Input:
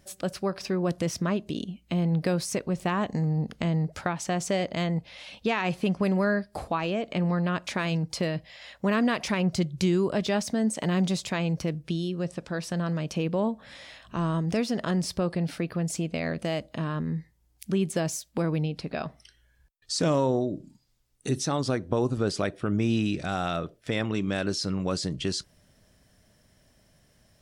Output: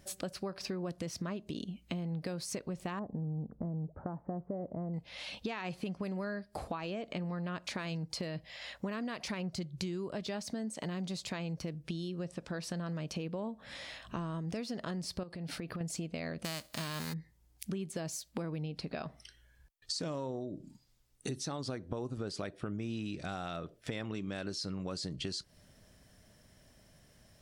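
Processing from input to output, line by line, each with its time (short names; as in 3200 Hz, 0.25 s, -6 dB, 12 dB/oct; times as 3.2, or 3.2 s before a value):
2.99–4.94 Gaussian blur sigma 9.1 samples
15.23–15.81 compressor 10:1, threshold -34 dBFS
16.44–17.12 spectral whitening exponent 0.3
whole clip: dynamic EQ 4400 Hz, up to +6 dB, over -55 dBFS, Q 6; compressor 6:1, threshold -36 dBFS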